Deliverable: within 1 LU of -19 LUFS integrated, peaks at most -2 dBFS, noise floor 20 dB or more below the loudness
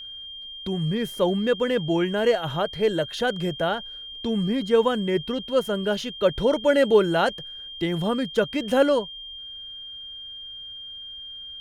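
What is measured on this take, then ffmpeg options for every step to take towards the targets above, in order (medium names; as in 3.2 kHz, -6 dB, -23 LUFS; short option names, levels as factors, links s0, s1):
steady tone 3.2 kHz; tone level -36 dBFS; loudness -23.5 LUFS; peak level -7.0 dBFS; loudness target -19.0 LUFS
-> -af "bandreject=f=3200:w=30"
-af "volume=1.68"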